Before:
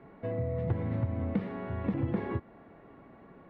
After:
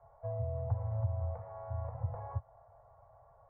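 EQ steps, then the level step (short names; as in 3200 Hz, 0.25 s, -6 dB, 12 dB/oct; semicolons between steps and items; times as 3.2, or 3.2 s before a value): elliptic band-stop 110–620 Hz, stop band 60 dB; LPF 1000 Hz 24 dB/oct; 0.0 dB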